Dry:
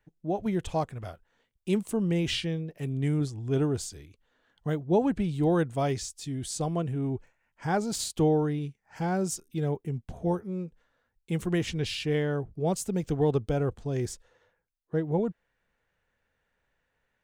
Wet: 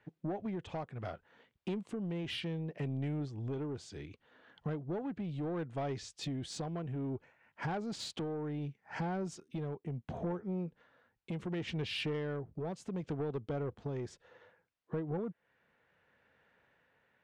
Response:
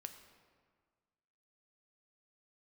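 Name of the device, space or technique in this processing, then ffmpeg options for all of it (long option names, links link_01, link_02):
AM radio: -af "highpass=120,lowpass=3300,acompressor=threshold=-40dB:ratio=6,asoftclip=type=tanh:threshold=-37.5dB,tremolo=f=0.67:d=0.28,volume=8dB"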